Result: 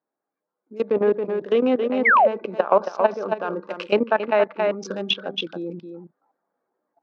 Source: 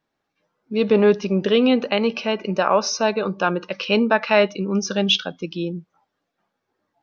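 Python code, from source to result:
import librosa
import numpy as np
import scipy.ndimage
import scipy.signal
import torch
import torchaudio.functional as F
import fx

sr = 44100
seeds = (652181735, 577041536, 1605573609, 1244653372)

y = fx.wiener(x, sr, points=15)
y = fx.level_steps(y, sr, step_db=17)
y = scipy.signal.sosfilt(scipy.signal.butter(2, 320.0, 'highpass', fs=sr, output='sos'), y)
y = fx.high_shelf(y, sr, hz=2200.0, db=-10.0)
y = y + 10.0 ** (-7.5 / 20.0) * np.pad(y, (int(274 * sr / 1000.0), 0))[:len(y)]
y = fx.rider(y, sr, range_db=5, speed_s=0.5)
y = fx.spec_paint(y, sr, seeds[0], shape='fall', start_s=2.05, length_s=0.23, low_hz=510.0, high_hz=2300.0, level_db=-19.0)
y = fx.env_lowpass_down(y, sr, base_hz=2600.0, full_db=-24.0)
y = y * librosa.db_to_amplitude(5.0)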